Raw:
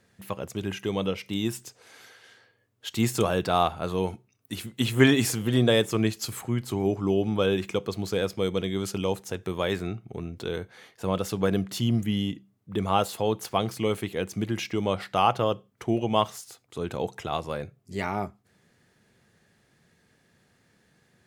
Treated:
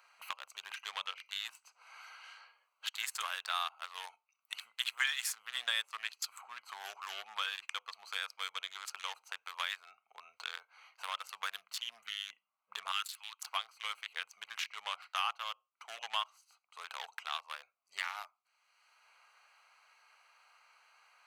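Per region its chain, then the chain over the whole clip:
12.92–13.43 HPF 1500 Hz 24 dB/oct + sample leveller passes 1
whole clip: Wiener smoothing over 25 samples; inverse Chebyshev high-pass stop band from 350 Hz, stop band 60 dB; three-band squash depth 70%

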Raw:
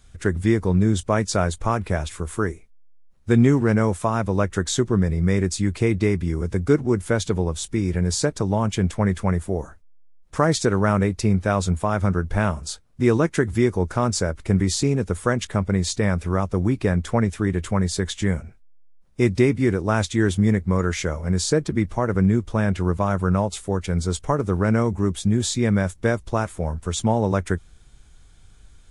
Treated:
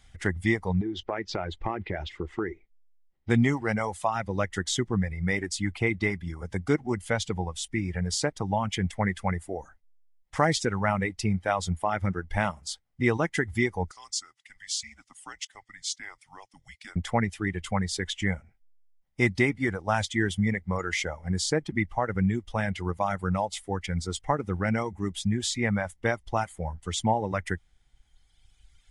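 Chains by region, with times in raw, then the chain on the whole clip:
0.81–3.3 bell 360 Hz +13 dB 0.6 oct + compressor, threshold -18 dBFS + LPF 4500 Hz 24 dB/oct
13.91–16.96 band-pass 6600 Hz, Q 1 + frequency shift -200 Hz
whole clip: reverb removal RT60 2 s; thirty-one-band EQ 400 Hz -4 dB, 800 Hz +9 dB, 2000 Hz +12 dB, 3150 Hz +7 dB, 5000 Hz +4 dB; gain -5.5 dB

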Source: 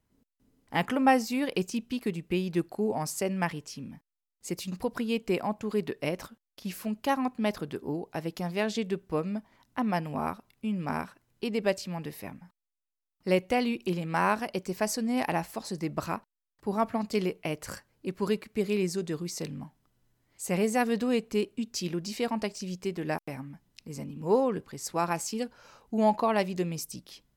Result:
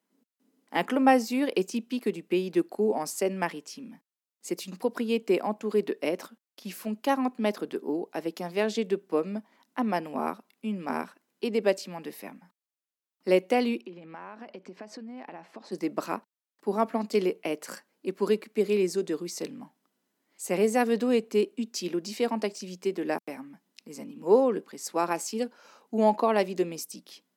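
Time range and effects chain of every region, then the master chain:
13.81–15.72 Bessel low-pass 2400 Hz + compressor 20:1, threshold -37 dBFS
whole clip: steep high-pass 200 Hz 36 dB/oct; dynamic EQ 400 Hz, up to +5 dB, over -39 dBFS, Q 1.2

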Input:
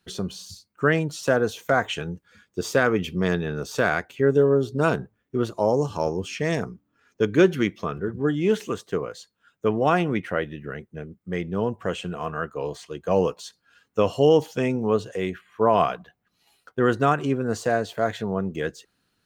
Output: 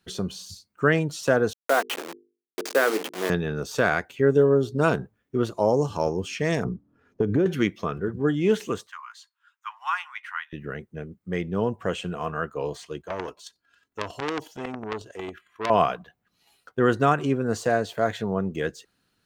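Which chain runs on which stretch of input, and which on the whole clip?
1.53–3.3 level-crossing sampler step -24 dBFS + HPF 300 Hz 24 dB/oct + notches 50/100/150/200/250/300/350/400/450 Hz
6.64–7.46 median filter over 5 samples + tilt shelf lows +9.5 dB, about 1100 Hz + compressor 16:1, threshold -17 dBFS
8.87–10.53 steep high-pass 920 Hz 72 dB/oct + high shelf 2900 Hz -7 dB
13.01–15.7 comb 3 ms, depth 46% + chopper 11 Hz, depth 60%, duty 10% + core saturation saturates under 3400 Hz
whole clip: dry

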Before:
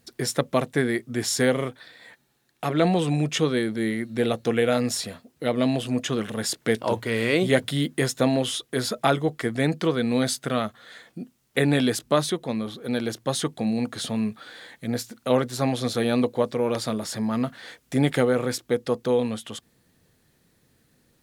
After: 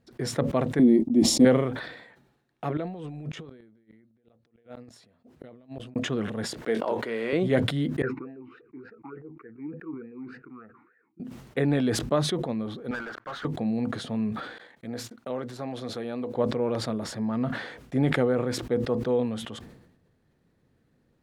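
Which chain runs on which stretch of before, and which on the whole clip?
0.79–1.45 resonant low shelf 560 Hz +11 dB, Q 1.5 + fixed phaser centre 420 Hz, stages 6 + gate -30 dBFS, range -30 dB
2.77–5.96 negative-ratio compressor -33 dBFS + flipped gate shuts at -24 dBFS, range -38 dB
6.62–7.33 HPF 310 Hz + doubler 22 ms -13.5 dB
8.02–11.2 air absorption 400 m + fixed phaser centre 1400 Hz, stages 4 + vowel sweep e-u 3.4 Hz
12.91–13.45 band-pass 1400 Hz, Q 4.5 + air absorption 61 m + sample leveller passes 5
14.58–16.35 gate -44 dBFS, range -29 dB + low shelf 160 Hz -11 dB + compressor 2:1, threshold -29 dBFS
whole clip: LPF 1100 Hz 6 dB/oct; sustainer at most 61 dB/s; gain -2.5 dB

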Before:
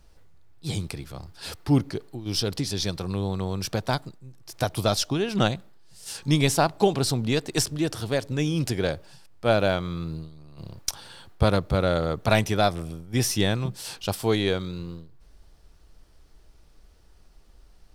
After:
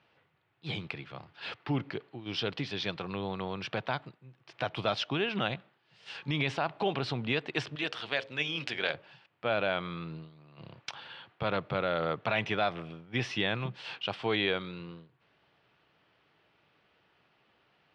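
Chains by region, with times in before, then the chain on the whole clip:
7.75–8.94 notches 60/120/180/240/300/360/420/480/540 Hz + AM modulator 130 Hz, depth 25% + tilt +3 dB/oct
whole clip: elliptic band-pass 120–2900 Hz, stop band 80 dB; limiter -15.5 dBFS; tilt shelf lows -6.5 dB, about 820 Hz; gain -1.5 dB

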